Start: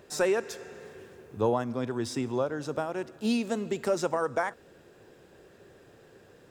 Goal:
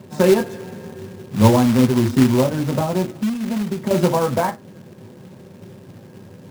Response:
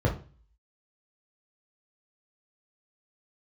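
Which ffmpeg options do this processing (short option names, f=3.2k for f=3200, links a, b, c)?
-filter_complex "[1:a]atrim=start_sample=2205,afade=t=out:st=0.35:d=0.01,atrim=end_sample=15876,asetrate=79380,aresample=44100[a];[0:a][a]afir=irnorm=-1:irlink=0,asettb=1/sr,asplit=3[b][c][d];[b]atrim=end=3.164[e];[c]atrim=start=3.16:end=3.91,asetpts=PTS-STARTPTS,afade=t=in:d=0.004:c=qsin,afade=t=out:st=0.746:d=0.004:c=qsin,acompressor=threshold=-16dB:ratio=12[f];[d]atrim=start=3.906[g];[e][f]acrossfade=d=0.004:c1=hsin:c2=qsin[h];[h][g]acrossfade=d=0.004:c1=qsin:c2=hsin,acrusher=bits=3:mode=log:mix=0:aa=0.000001,volume=-3.5dB"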